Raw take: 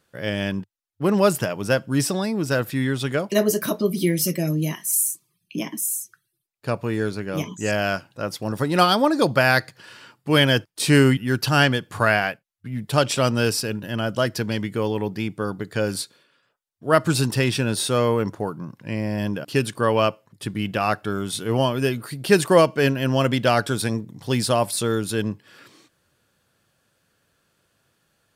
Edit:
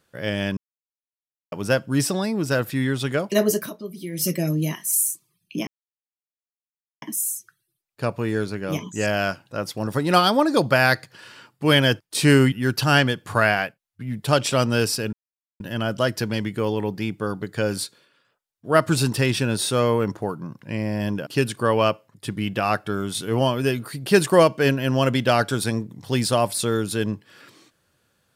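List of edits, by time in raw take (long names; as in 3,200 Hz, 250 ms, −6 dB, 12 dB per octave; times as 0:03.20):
0:00.57–0:01.52: silence
0:03.56–0:04.26: duck −12.5 dB, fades 0.15 s
0:05.67: splice in silence 1.35 s
0:13.78: splice in silence 0.47 s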